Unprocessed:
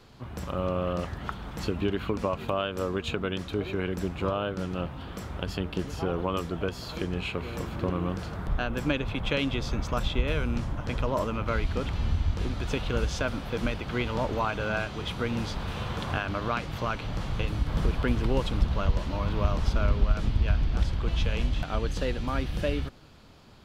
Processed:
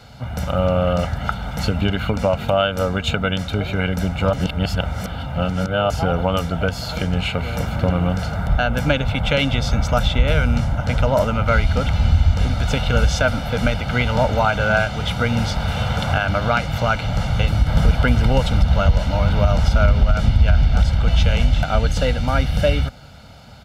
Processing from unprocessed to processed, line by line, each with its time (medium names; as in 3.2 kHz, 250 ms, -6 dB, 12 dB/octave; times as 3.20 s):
4.33–5.90 s: reverse
whole clip: high-pass 42 Hz; comb 1.4 ms, depth 77%; loudness maximiser +13 dB; trim -4 dB